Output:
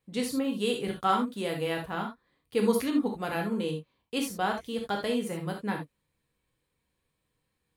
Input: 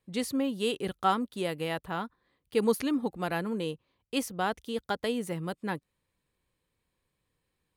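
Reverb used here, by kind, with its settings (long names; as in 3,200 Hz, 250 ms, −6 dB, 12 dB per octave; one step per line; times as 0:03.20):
reverb whose tail is shaped and stops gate 100 ms flat, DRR 1 dB
level −1.5 dB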